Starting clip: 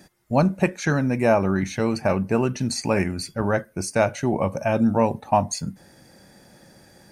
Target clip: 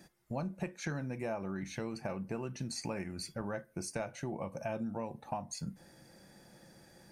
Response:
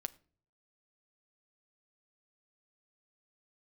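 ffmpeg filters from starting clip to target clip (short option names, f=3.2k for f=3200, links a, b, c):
-filter_complex "[0:a]acompressor=threshold=-28dB:ratio=5[a];[1:a]atrim=start_sample=2205,atrim=end_sample=3087[b];[a][b]afir=irnorm=-1:irlink=0,volume=-5.5dB"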